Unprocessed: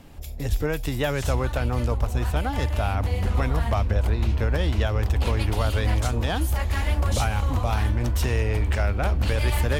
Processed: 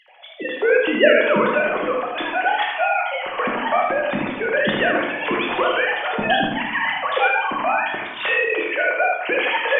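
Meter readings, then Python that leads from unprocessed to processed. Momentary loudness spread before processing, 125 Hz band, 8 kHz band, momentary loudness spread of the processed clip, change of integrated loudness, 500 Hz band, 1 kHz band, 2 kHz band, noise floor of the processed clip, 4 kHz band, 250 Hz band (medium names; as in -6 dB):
2 LU, -18.5 dB, under -40 dB, 7 LU, +5.0 dB, +10.0 dB, +10.5 dB, +14.0 dB, -32 dBFS, +8.0 dB, +4.0 dB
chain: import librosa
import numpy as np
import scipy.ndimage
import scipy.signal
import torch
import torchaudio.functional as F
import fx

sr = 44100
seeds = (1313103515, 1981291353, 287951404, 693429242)

p1 = fx.sine_speech(x, sr)
p2 = fx.high_shelf(p1, sr, hz=2500.0, db=11.5)
p3 = p2 + fx.echo_single(p2, sr, ms=78, db=-5.5, dry=0)
p4 = fx.room_shoebox(p3, sr, seeds[0], volume_m3=280.0, walls='mixed', distance_m=1.0)
y = p4 * librosa.db_to_amplitude(-3.5)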